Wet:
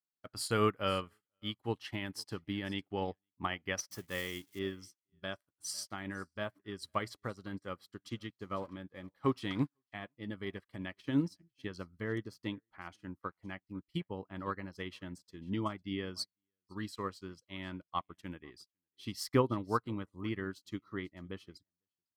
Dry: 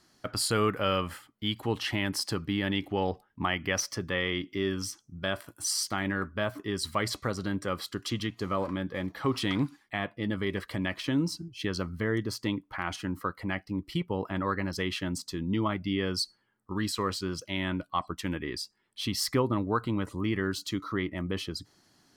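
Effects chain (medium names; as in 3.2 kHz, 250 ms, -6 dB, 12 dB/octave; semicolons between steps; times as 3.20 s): 3.91–4.59 s: zero-crossing glitches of -29 dBFS; on a send: delay 503 ms -22 dB; on the sum: upward expansion 2.5:1, over -51 dBFS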